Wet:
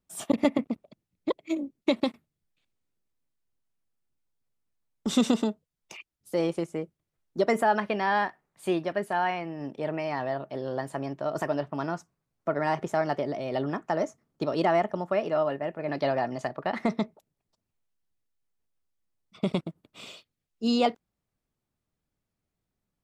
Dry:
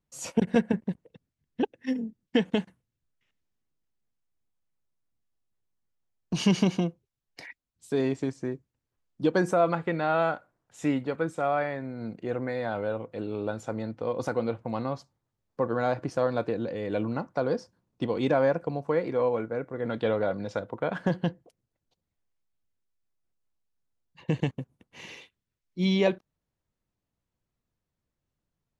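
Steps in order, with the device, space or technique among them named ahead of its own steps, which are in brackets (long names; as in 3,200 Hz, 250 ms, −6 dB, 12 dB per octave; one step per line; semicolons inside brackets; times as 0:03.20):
nightcore (speed change +25%)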